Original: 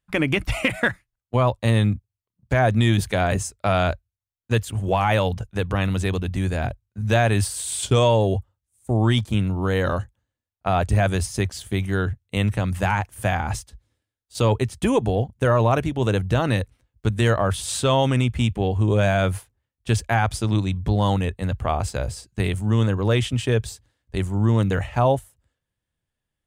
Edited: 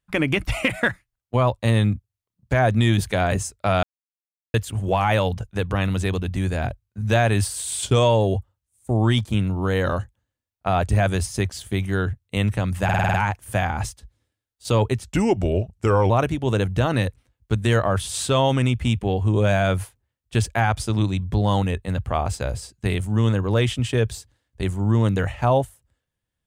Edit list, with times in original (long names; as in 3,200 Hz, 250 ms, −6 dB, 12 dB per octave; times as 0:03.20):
0:03.83–0:04.54: silence
0:12.84: stutter 0.05 s, 7 plays
0:14.74–0:15.64: play speed 85%